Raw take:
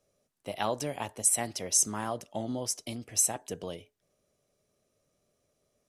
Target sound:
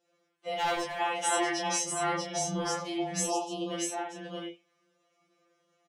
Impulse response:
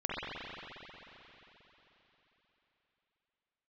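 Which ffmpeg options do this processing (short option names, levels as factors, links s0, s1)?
-filter_complex "[0:a]highpass=310,lowpass=4900,asettb=1/sr,asplit=3[s0][s1][s2];[s0]atrim=end=1.764[s3];[s1]atrim=start=1.76:end=2.57,asetpts=PTS-STARTPTS,afade=t=in:d=0.004:c=qsin,afade=t=out:st=0.806:d=0.004:c=qsin,aeval=exprs='val(0)*sin(2*PI*64*n/s)':c=same[s4];[s2]atrim=start=2.566[s5];[s3][s4]acrossfade=d=0.004:c1=hsin:c2=qsin[s6];[s6][s5]acrossfade=d=0.004:c1=qsin:c2=hsin,asplit=2[s7][s8];[s8]adelay=26,volume=0.708[s9];[s7][s9]amix=inputs=2:normalize=0,aecho=1:1:638:0.668[s10];[1:a]atrim=start_sample=2205,atrim=end_sample=4410[s11];[s10][s11]afir=irnorm=-1:irlink=0,asettb=1/sr,asplit=3[s12][s13][s14];[s12]atrim=end=0.574[s15];[s13]atrim=start=0.57:end=1.01,asetpts=PTS-STARTPTS,afade=t=in:d=0.004:c=qsin,afade=t=out:st=0.436:d=0.004:c=qsin,asoftclip=type=hard:threshold=0.0422[s16];[s14]atrim=start=1.006[s17];[s15][s16]acrossfade=d=0.004:c1=hsin:c2=qsin[s18];[s18][s17]acrossfade=d=0.004:c1=qsin:c2=hsin,asplit=3[s19][s20][s21];[s19]afade=t=out:st=3.28:d=0.02[s22];[s20]asuperstop=centerf=1800:order=20:qfactor=1.4,afade=t=in:st=3.28:d=0.02,afade=t=out:st=3.69:d=0.02[s23];[s21]afade=t=in:st=3.69:d=0.02[s24];[s22][s23][s24]amix=inputs=3:normalize=0,afftfilt=real='re*2.83*eq(mod(b,8),0)':imag='im*2.83*eq(mod(b,8),0)':win_size=2048:overlap=0.75,volume=1.88"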